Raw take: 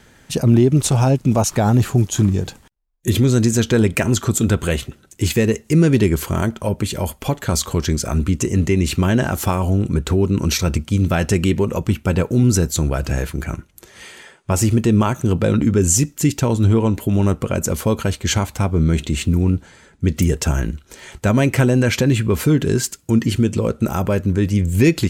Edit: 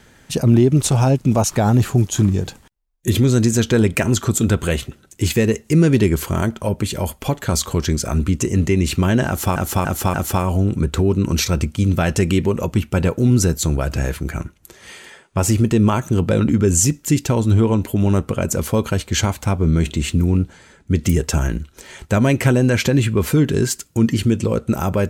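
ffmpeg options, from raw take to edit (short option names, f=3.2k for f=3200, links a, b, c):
-filter_complex "[0:a]asplit=4[a][b][c][d];[a]atrim=end=9.562[e];[b]atrim=start=9.268:end=9.562[f];[c]atrim=start=9.268:end=9.562[g];[d]atrim=start=9.268[h];[e][f]acrossfade=d=0.004:c1=hsin:c2=hsin[i];[i][g]acrossfade=d=0.004:c1=hsin:c2=hsin[j];[j][h]acrossfade=d=0.004:c1=hsin:c2=hsin"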